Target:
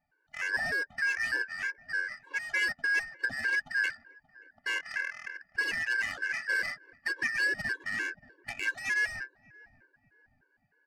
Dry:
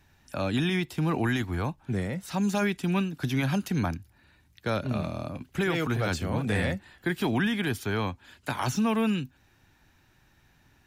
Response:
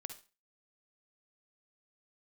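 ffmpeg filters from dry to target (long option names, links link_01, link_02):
-filter_complex "[0:a]afftfilt=real='real(if(lt(b,272),68*(eq(floor(b/68),0)*2+eq(floor(b/68),1)*0+eq(floor(b/68),2)*3+eq(floor(b/68),3)*1)+mod(b,68),b),0)':imag='imag(if(lt(b,272),68*(eq(floor(b/68),0)*2+eq(floor(b/68),1)*0+eq(floor(b/68),2)*3+eq(floor(b/68),3)*1)+mod(b,68),b),0)':win_size=2048:overlap=0.75,asplit=2[link_01][link_02];[link_02]adelay=580,lowpass=frequency=1700:poles=1,volume=-15dB,asplit=2[link_03][link_04];[link_04]adelay=580,lowpass=frequency=1700:poles=1,volume=0.51,asplit=2[link_05][link_06];[link_06]adelay=580,lowpass=frequency=1700:poles=1,volume=0.51,asplit=2[link_07][link_08];[link_08]adelay=580,lowpass=frequency=1700:poles=1,volume=0.51,asplit=2[link_09][link_10];[link_10]adelay=580,lowpass=frequency=1700:poles=1,volume=0.51[link_11];[link_03][link_05][link_07][link_09][link_11]amix=inputs=5:normalize=0[link_12];[link_01][link_12]amix=inputs=2:normalize=0,adynamicsmooth=sensitivity=2:basefreq=900,afftfilt=real='re*gt(sin(2*PI*3.3*pts/sr)*(1-2*mod(floor(b*sr/1024/290),2)),0)':imag='im*gt(sin(2*PI*3.3*pts/sr)*(1-2*mod(floor(b*sr/1024/290),2)),0)':win_size=1024:overlap=0.75"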